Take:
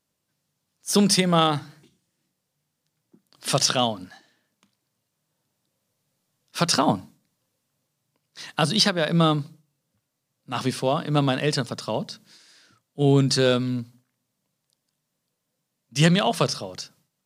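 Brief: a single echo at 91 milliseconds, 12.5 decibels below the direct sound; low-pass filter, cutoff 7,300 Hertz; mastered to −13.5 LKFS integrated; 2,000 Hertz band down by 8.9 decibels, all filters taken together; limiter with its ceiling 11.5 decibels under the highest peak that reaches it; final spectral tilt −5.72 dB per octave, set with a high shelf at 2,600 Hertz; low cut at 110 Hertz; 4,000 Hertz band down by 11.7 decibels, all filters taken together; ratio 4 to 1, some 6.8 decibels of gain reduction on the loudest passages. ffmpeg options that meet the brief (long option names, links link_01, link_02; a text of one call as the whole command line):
ffmpeg -i in.wav -af "highpass=110,lowpass=7300,equalizer=frequency=2000:width_type=o:gain=-8,highshelf=frequency=2600:gain=-6,equalizer=frequency=4000:width_type=o:gain=-7,acompressor=threshold=-23dB:ratio=4,alimiter=limit=-23dB:level=0:latency=1,aecho=1:1:91:0.237,volume=20dB" out.wav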